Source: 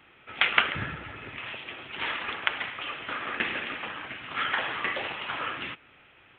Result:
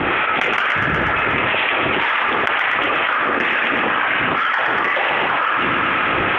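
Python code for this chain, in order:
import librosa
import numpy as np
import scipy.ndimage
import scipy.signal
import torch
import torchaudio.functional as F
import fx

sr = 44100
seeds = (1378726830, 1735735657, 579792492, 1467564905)

p1 = scipy.signal.sosfilt(scipy.signal.butter(2, 1900.0, 'lowpass', fs=sr, output='sos'), x)
p2 = fx.low_shelf(p1, sr, hz=250.0, db=-11.5)
p3 = 10.0 ** (-22.5 / 20.0) * np.tanh(p2 / 10.0 ** (-22.5 / 20.0))
p4 = p2 + (p3 * 10.0 ** (-6.0 / 20.0))
p5 = fx.harmonic_tremolo(p4, sr, hz=2.1, depth_pct=70, crossover_hz=560.0)
p6 = fx.echo_feedback(p5, sr, ms=121, feedback_pct=53, wet_db=-11.0)
p7 = fx.env_flatten(p6, sr, amount_pct=100)
y = p7 * 10.0 ** (5.0 / 20.0)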